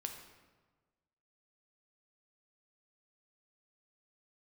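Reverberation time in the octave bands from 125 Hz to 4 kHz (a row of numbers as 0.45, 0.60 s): 1.6, 1.4, 1.4, 1.3, 1.1, 0.90 s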